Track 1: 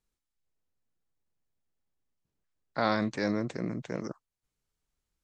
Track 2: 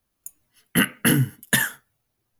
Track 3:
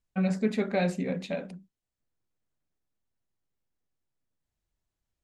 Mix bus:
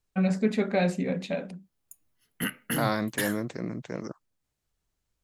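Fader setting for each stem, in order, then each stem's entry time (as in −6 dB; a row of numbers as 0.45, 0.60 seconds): 0.0, −11.5, +2.0 decibels; 0.00, 1.65, 0.00 seconds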